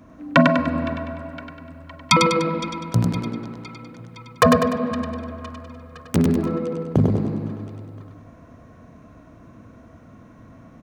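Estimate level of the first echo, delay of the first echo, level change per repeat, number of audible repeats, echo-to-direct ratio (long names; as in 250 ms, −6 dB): −4.0 dB, 99 ms, −6.5 dB, 3, −3.0 dB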